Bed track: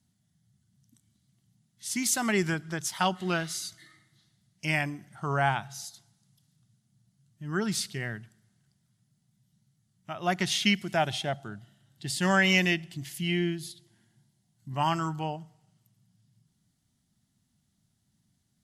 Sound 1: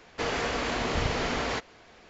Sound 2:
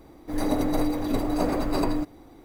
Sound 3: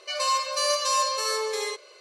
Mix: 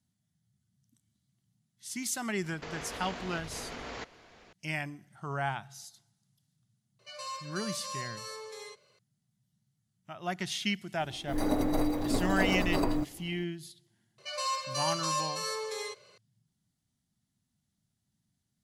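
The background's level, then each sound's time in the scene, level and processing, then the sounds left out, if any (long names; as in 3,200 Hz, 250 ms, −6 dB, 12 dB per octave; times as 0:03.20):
bed track −7 dB
0:02.44: mix in 1 −8 dB + compressor whose output falls as the input rises −34 dBFS
0:06.99: mix in 3 −15.5 dB
0:11.00: mix in 2 −4 dB
0:14.18: mix in 3 −8 dB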